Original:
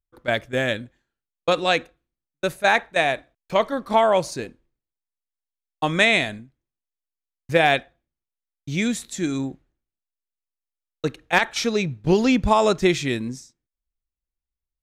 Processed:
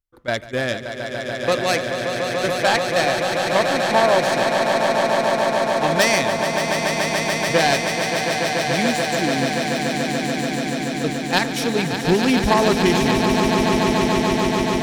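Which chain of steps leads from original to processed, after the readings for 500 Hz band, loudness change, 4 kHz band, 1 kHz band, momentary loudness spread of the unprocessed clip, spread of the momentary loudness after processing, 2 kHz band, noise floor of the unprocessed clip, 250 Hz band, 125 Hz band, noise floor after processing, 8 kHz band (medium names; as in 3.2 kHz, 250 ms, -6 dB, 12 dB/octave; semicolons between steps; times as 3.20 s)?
+5.0 dB, +2.5 dB, +6.0 dB, +5.0 dB, 12 LU, 7 LU, +3.5 dB, under -85 dBFS, +5.0 dB, +5.0 dB, -28 dBFS, +9.0 dB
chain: self-modulated delay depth 0.11 ms; echo with a slow build-up 144 ms, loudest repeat 8, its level -7.5 dB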